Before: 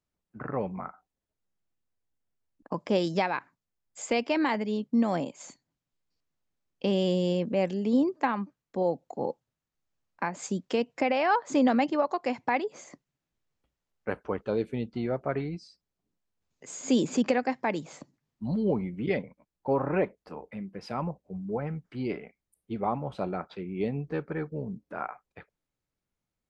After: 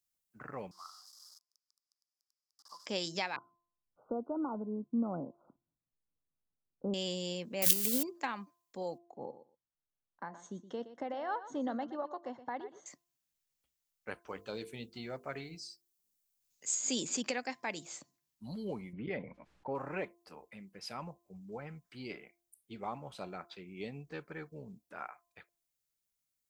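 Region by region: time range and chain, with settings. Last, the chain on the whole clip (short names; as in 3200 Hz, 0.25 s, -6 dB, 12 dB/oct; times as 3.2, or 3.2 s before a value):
0.71–2.86 zero-crossing step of -43.5 dBFS + double band-pass 2400 Hz, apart 2.1 oct + high shelf 2600 Hz +10 dB
3.36–6.94 brick-wall FIR low-pass 1500 Hz + tilt shelf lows +7 dB, about 710 Hz
7.62–8.03 switching spikes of -23.5 dBFS + transient shaper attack +3 dB, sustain +11 dB
8.98–12.86 running mean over 18 samples + feedback echo 0.12 s, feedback 16%, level -13.5 dB
14.27–16.75 high shelf 4900 Hz +6.5 dB + notches 50/100/150/200/250/300/350/400/450/500 Hz
18.93–19.75 LPF 1700 Hz + fast leveller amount 50%
whole clip: pre-emphasis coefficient 0.9; de-hum 344.4 Hz, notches 3; gain +6 dB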